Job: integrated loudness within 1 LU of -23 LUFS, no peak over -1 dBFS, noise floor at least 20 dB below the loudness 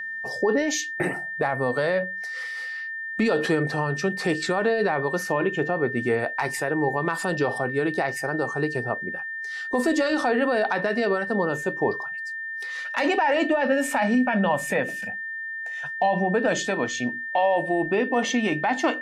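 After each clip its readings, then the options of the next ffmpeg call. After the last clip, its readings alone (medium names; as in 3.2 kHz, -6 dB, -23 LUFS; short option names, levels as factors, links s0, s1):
steady tone 1.8 kHz; tone level -30 dBFS; loudness -24.5 LUFS; peak level -12.0 dBFS; loudness target -23.0 LUFS
-> -af "bandreject=f=1800:w=30"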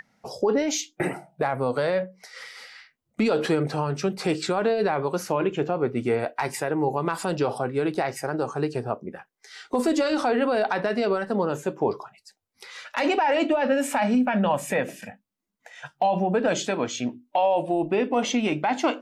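steady tone not found; loudness -25.0 LUFS; peak level -12.0 dBFS; loudness target -23.0 LUFS
-> -af "volume=1.26"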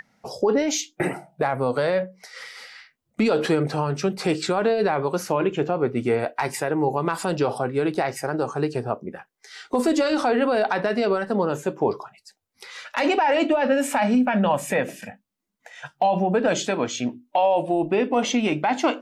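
loudness -23.0 LUFS; peak level -10.0 dBFS; noise floor -74 dBFS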